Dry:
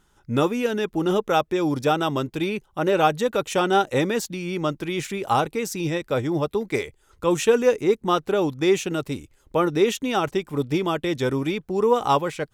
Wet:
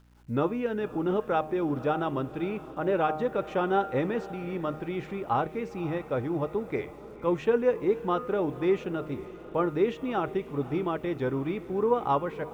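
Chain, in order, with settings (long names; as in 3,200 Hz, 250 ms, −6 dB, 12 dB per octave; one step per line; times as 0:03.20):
low-pass filter 1,900 Hz 12 dB per octave
hum removal 154.7 Hz, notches 22
bit reduction 10 bits
mains hum 60 Hz, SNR 30 dB
feedback delay with all-pass diffusion 531 ms, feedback 56%, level −16 dB
level −5.5 dB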